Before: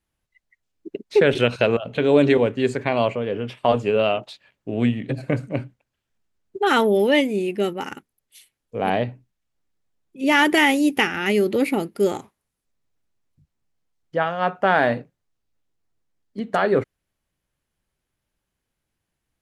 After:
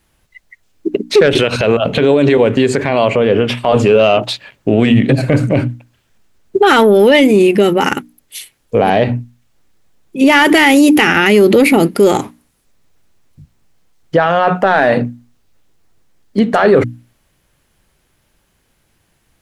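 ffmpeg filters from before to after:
-filter_complex "[0:a]asplit=3[a][b][c];[a]afade=t=out:st=1.28:d=0.02[d];[b]acompressor=threshold=-27dB:ratio=3:attack=3.2:release=140:knee=1:detection=peak,afade=t=in:st=1.28:d=0.02,afade=t=out:st=3.74:d=0.02[e];[c]afade=t=in:st=3.74:d=0.02[f];[d][e][f]amix=inputs=3:normalize=0,bandreject=f=60:t=h:w=6,bandreject=f=120:t=h:w=6,bandreject=f=180:t=h:w=6,bandreject=f=240:t=h:w=6,bandreject=f=300:t=h:w=6,acontrast=77,alimiter=level_in=14dB:limit=-1dB:release=50:level=0:latency=1,volume=-1dB"

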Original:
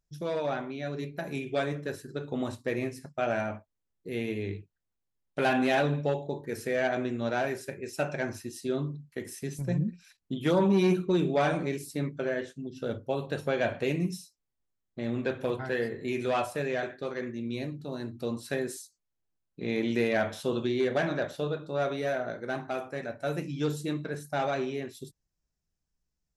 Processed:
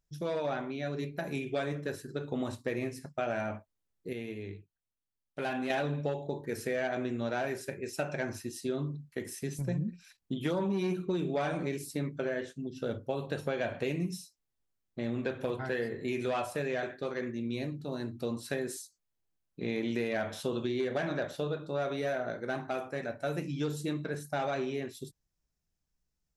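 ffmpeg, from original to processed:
-filter_complex "[0:a]asplit=3[a][b][c];[a]atrim=end=4.132[d];[b]atrim=start=4.128:end=5.702,asetpts=PTS-STARTPTS,volume=-7.5dB[e];[c]atrim=start=5.698[f];[d][e]acrossfade=d=0.004:c1=hsin:c2=hsin[g];[g][f]acrossfade=d=0.004:c1=hsin:c2=hsin,acompressor=threshold=-29dB:ratio=4"

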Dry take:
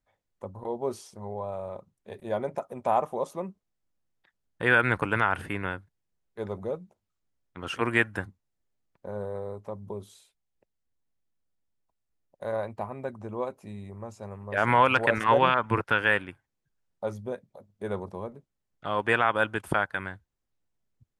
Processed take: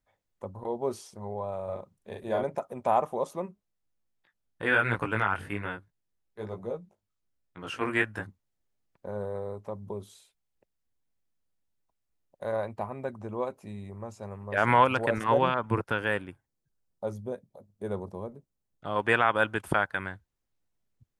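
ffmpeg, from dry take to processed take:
-filter_complex "[0:a]asettb=1/sr,asplit=3[a][b][c];[a]atrim=end=1.644[d];[b]atrim=start=1.64:end=2.44,asetpts=PTS-STARTPTS,afade=t=in:d=0.004:c=qsin,afade=t=out:st=0.796:d=0.004:c=qsin,asplit=2[e][f];[f]adelay=41,volume=-2.5dB[g];[e][g]amix=inputs=2:normalize=0,atrim=end_sample=35280[h];[c]atrim=start=2.436[i];[d][h]acrossfade=d=0.004:c1=hsin:c2=qsin[j];[j][i]acrossfade=d=0.004:c1=qsin:c2=hsin,asplit=3[k][l][m];[k]afade=t=out:st=3.45:d=0.02[n];[l]flanger=delay=17:depth=3.4:speed=1.2,afade=t=in:st=3.45:d=0.02,afade=t=out:st=8.26:d=0.02[o];[m]afade=t=in:st=8.26:d=0.02[p];[n][o][p]amix=inputs=3:normalize=0,asettb=1/sr,asplit=3[q][r][s];[q]atrim=end=14.844[t];[r]atrim=start=14.84:end=18.96,asetpts=PTS-STARTPTS,afade=t=in:d=0.004:c=qsin,afade=t=out:st=4.116:d=0.004:c=qsin,equalizer=f=2.1k:w=0.54:g=-7.5[u];[s]atrim=start=18.956[v];[t][u]acrossfade=d=0.004:c1=hsin:c2=qsin[w];[w][v]acrossfade=d=0.004:c1=qsin:c2=hsin"

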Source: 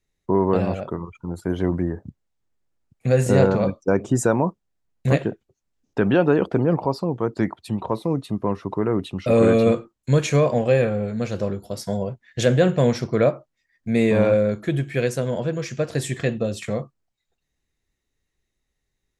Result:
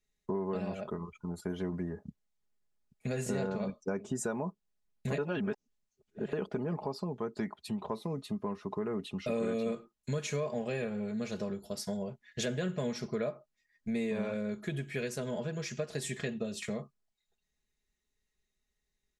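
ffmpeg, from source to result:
-filter_complex "[0:a]asplit=3[a][b][c];[a]atrim=end=5.182[d];[b]atrim=start=5.178:end=6.332,asetpts=PTS-STARTPTS,areverse[e];[c]atrim=start=6.328[f];[d][e]acrossfade=d=0.004:c1=hsin:c2=hsin[g];[g][f]acrossfade=d=0.004:c1=hsin:c2=hsin,equalizer=f=5.7k:t=o:w=2.7:g=4,aecho=1:1:4.8:0.63,acompressor=threshold=-24dB:ratio=3,volume=-9dB"

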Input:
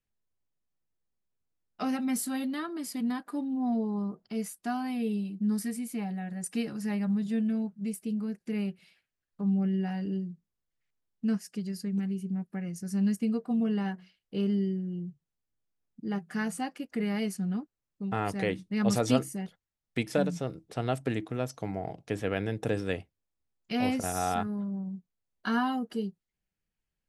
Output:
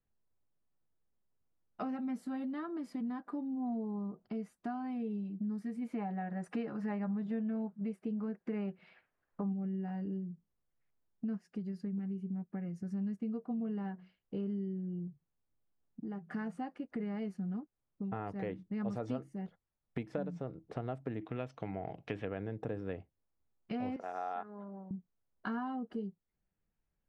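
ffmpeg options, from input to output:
-filter_complex "[0:a]asplit=3[a][b][c];[a]afade=t=out:st=5.81:d=0.02[d];[b]equalizer=f=1.1k:w=0.31:g=11.5,afade=t=in:st=5.81:d=0.02,afade=t=out:st=9.52:d=0.02[e];[c]afade=t=in:st=9.52:d=0.02[f];[d][e][f]amix=inputs=3:normalize=0,asettb=1/sr,asplit=3[g][h][i];[g]atrim=end=15.074[j];[h]atrim=start=15.07:end=16.29,asetpts=PTS-STARTPTS,afade=t=in:d=0.004:c=qsin,afade=t=out:st=1.216:d=0.004:c=qsin,acompressor=threshold=-43dB:ratio=2:attack=3.2:release=140:knee=1:detection=peak[k];[i]atrim=start=16.286[l];[j][k]acrossfade=d=0.004:c1=hsin:c2=qsin[m];[m][l]acrossfade=d=0.004:c1=qsin:c2=hsin,asettb=1/sr,asplit=3[n][o][p];[n]atrim=end=21.214[q];[o]atrim=start=21.21:end=22.25,asetpts=PTS-STARTPTS,afade=t=in:d=0.004:c=qsin,afade=t=out:st=1.036:d=0.004:c=qsin,equalizer=f=2.8k:w=0.99:g=13.5[r];[p]atrim=start=22.246[s];[q][r]acrossfade=d=0.004:c1=hsin:c2=qsin[t];[t][s]acrossfade=d=0.004:c1=qsin:c2=hsin,asettb=1/sr,asplit=3[u][v][w];[u]atrim=end=23.964[x];[v]atrim=start=23.96:end=24.91,asetpts=PTS-STARTPTS,afade=t=in:d=0.004:c=qsin,afade=t=out:st=0.946:d=0.004:c=qsin,highpass=520,lowpass=4.3k[y];[w]atrim=start=24.906[z];[x][y]acrossfade=d=0.004:c1=hsin:c2=qsin[aa];[aa][z]acrossfade=d=0.004:c1=qsin:c2=hsin,lowpass=1.2k,aemphasis=mode=production:type=75kf,acompressor=threshold=-42dB:ratio=3,volume=3dB"

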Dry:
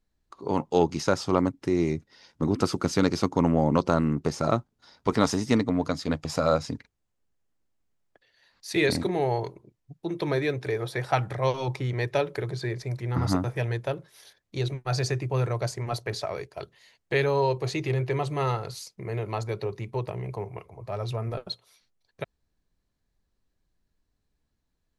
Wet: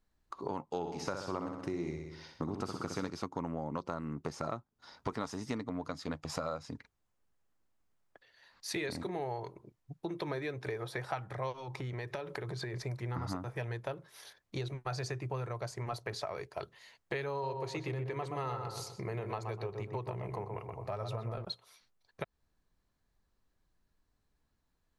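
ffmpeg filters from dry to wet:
-filter_complex "[0:a]asplit=3[a][b][c];[a]afade=t=out:st=0.83:d=0.02[d];[b]aecho=1:1:63|126|189|252|315|378:0.501|0.251|0.125|0.0626|0.0313|0.0157,afade=t=in:st=0.83:d=0.02,afade=t=out:st=3.09:d=0.02[e];[c]afade=t=in:st=3.09:d=0.02[f];[d][e][f]amix=inputs=3:normalize=0,asplit=3[g][h][i];[g]afade=t=out:st=11.52:d=0.02[j];[h]acompressor=threshold=-33dB:ratio=6:attack=3.2:release=140:knee=1:detection=peak,afade=t=in:st=11.52:d=0.02,afade=t=out:st=12.73:d=0.02[k];[i]afade=t=in:st=12.73:d=0.02[l];[j][k][l]amix=inputs=3:normalize=0,asettb=1/sr,asplit=3[m][n][o];[m]atrim=end=17.314[p];[n]atrim=start=17.31:end=21.45,asetpts=PTS-STARTPTS,afade=t=in:d=0.004:c=qsin,afade=t=out:st=4.136:d=0.004:c=qsin,asplit=2[q][r];[r]adelay=124,lowpass=f=1.5k:p=1,volume=-5dB,asplit=2[s][t];[t]adelay=124,lowpass=f=1.5k:p=1,volume=0.31,asplit=2[u][v];[v]adelay=124,lowpass=f=1.5k:p=1,volume=0.31,asplit=2[w][x];[x]adelay=124,lowpass=f=1.5k:p=1,volume=0.31[y];[q][s][u][w][y]amix=inputs=5:normalize=0,atrim=end_sample=182574[z];[o]atrim=start=21.446[aa];[p][z]acrossfade=d=0.004:c1=hsin:c2=qsin[ab];[ab][aa]acrossfade=d=0.004:c1=qsin:c2=hsin,equalizer=f=1.1k:w=0.98:g=5.5,acompressor=threshold=-34dB:ratio=5,volume=-1.5dB"

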